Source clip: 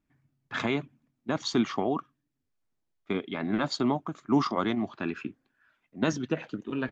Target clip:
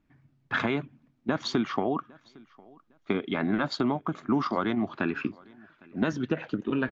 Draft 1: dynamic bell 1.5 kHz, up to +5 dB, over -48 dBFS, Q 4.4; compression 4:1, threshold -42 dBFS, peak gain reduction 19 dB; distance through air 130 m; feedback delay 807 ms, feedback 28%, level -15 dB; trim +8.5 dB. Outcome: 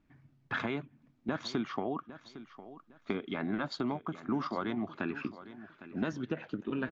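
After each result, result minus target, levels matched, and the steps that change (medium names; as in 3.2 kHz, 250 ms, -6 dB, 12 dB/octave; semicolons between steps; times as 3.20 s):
compression: peak gain reduction +7 dB; echo-to-direct +10.5 dB
change: compression 4:1, threshold -32.5 dBFS, peak gain reduction 12 dB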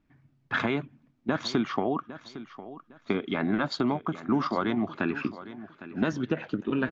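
echo-to-direct +10.5 dB
change: feedback delay 807 ms, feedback 28%, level -25.5 dB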